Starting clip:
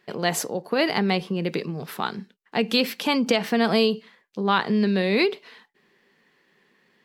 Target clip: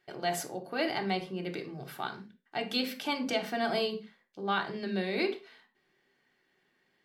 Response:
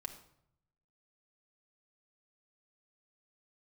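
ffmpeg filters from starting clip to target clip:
-filter_complex "[1:a]atrim=start_sample=2205,afade=t=out:st=0.37:d=0.01,atrim=end_sample=16758,asetrate=79380,aresample=44100[s0];[0:a][s0]afir=irnorm=-1:irlink=0,volume=0.841"

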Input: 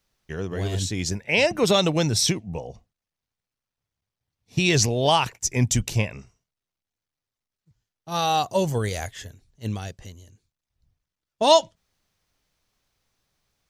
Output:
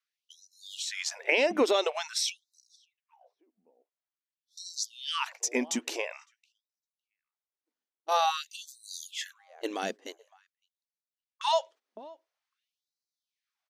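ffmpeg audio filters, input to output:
-filter_complex "[0:a]agate=range=0.126:threshold=0.01:ratio=16:detection=peak,acompressor=threshold=0.0316:ratio=6,highshelf=f=4800:g=-11,asplit=2[s0][s1];[s1]adelay=558,lowpass=f=1100:p=1,volume=0.0794,asplit=2[s2][s3];[s3]adelay=558,lowpass=f=1100:p=1,volume=0.21[s4];[s0][s2][s4]amix=inputs=3:normalize=0,afftfilt=real='re*gte(b*sr/1024,210*pow(3900/210,0.5+0.5*sin(2*PI*0.48*pts/sr)))':imag='im*gte(b*sr/1024,210*pow(3900/210,0.5+0.5*sin(2*PI*0.48*pts/sr)))':win_size=1024:overlap=0.75,volume=2.82"

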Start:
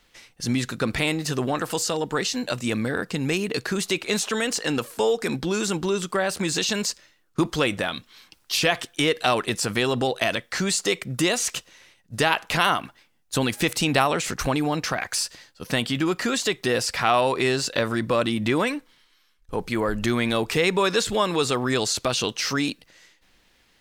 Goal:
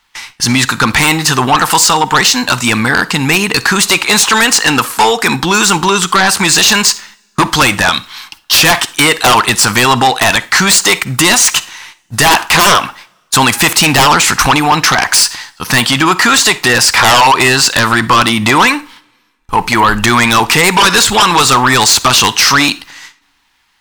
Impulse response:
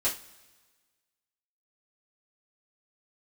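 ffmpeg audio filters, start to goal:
-filter_complex "[0:a]agate=range=0.158:threshold=0.00224:ratio=16:detection=peak,lowshelf=f=710:t=q:w=3:g=-7.5,aeval=exprs='0.794*sin(PI/2*7.94*val(0)/0.794)':c=same,asplit=2[s0][s1];[1:a]atrim=start_sample=2205,adelay=45[s2];[s1][s2]afir=irnorm=-1:irlink=0,volume=0.0562[s3];[s0][s3]amix=inputs=2:normalize=0,volume=0.841"

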